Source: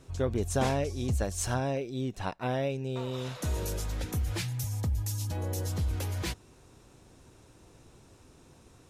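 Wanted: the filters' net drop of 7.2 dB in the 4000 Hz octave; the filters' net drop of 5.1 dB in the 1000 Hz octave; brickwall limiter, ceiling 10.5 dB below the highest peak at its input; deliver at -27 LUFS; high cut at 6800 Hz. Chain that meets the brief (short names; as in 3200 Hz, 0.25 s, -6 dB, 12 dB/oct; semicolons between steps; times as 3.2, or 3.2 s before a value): LPF 6800 Hz; bell 1000 Hz -7 dB; bell 4000 Hz -8.5 dB; gain +9.5 dB; limiter -18 dBFS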